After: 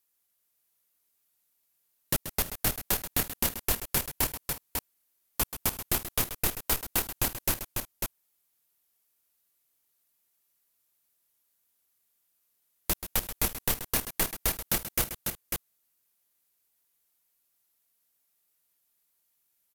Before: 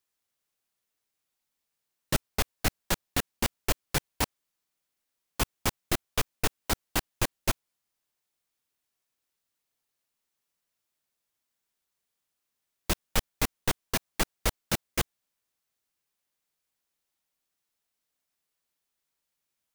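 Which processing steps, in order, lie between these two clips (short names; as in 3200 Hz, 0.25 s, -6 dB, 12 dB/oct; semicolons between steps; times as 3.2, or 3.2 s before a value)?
bell 13000 Hz +13.5 dB 0.85 oct; compressor 2.5:1, threshold -26 dBFS, peak gain reduction 6.5 dB; tapped delay 0.132/0.302/0.337/0.547 s -11.5/-16/-17.5/-4.5 dB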